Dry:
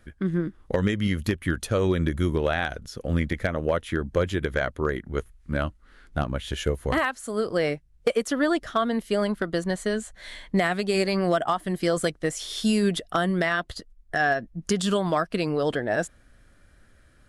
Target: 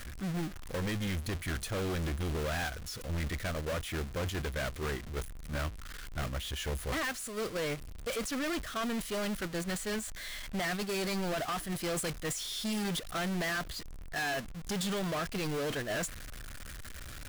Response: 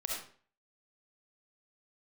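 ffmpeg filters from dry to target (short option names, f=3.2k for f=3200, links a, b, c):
-af "aeval=exprs='val(0)+0.5*0.0422*sgn(val(0))':c=same,agate=range=-7dB:threshold=-24dB:ratio=16:detection=peak,equalizer=f=390:w=0.37:g=-6.5,bandreject=f=880:w=12,asoftclip=type=hard:threshold=-29dB,volume=-2.5dB"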